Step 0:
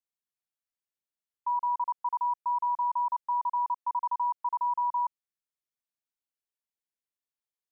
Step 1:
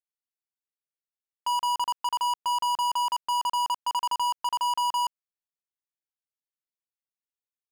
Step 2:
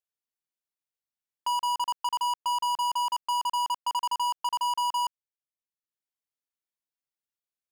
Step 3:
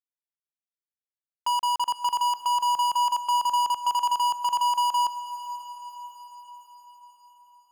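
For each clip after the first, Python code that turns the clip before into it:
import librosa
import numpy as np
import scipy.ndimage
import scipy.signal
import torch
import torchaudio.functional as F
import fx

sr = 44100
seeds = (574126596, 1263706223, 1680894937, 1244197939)

y1 = fx.leveller(x, sr, passes=5)
y2 = fx.transient(y1, sr, attack_db=1, sustain_db=-8)
y2 = y2 * librosa.db_to_amplitude(-1.5)
y3 = np.sign(y2) * np.maximum(np.abs(y2) - 10.0 ** (-56.0 / 20.0), 0.0)
y3 = fx.echo_diffused(y3, sr, ms=505, feedback_pct=57, wet_db=-14.0)
y3 = y3 * librosa.db_to_amplitude(3.0)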